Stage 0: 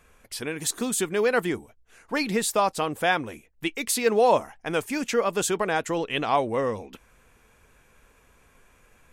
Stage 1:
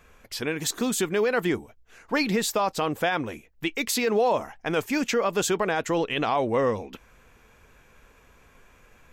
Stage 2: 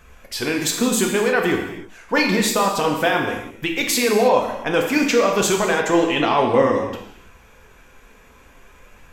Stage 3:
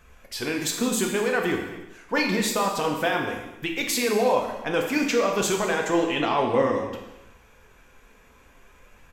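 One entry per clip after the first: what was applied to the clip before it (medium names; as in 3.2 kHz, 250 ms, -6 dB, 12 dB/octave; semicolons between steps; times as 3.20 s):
peaking EQ 9.5 kHz -13 dB 0.37 oct; peak limiter -17.5 dBFS, peak gain reduction 9.5 dB; trim +3 dB
flange 0.55 Hz, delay 0.6 ms, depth 4.2 ms, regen +61%; gated-style reverb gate 350 ms falling, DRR 1 dB; trim +9 dB
delay 372 ms -23.5 dB; trim -5.5 dB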